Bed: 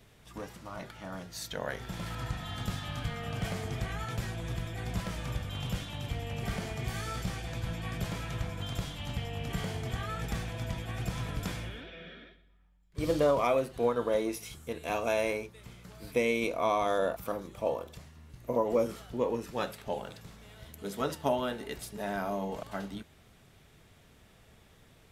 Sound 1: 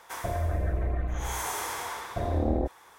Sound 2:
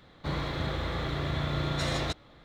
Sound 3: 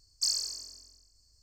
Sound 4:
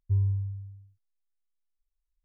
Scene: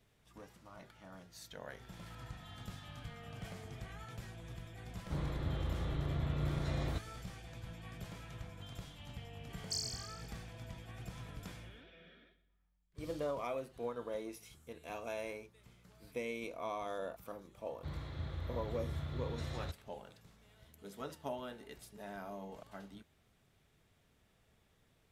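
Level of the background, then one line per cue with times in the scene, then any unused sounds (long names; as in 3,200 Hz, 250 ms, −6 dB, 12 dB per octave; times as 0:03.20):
bed −12.5 dB
0:04.86: mix in 2 −12 dB + spectral tilt −2.5 dB per octave
0:09.49: mix in 3 −10 dB
0:17.59: mix in 2 −17.5 dB + parametric band 82 Hz +13.5 dB 1.4 octaves
not used: 1, 4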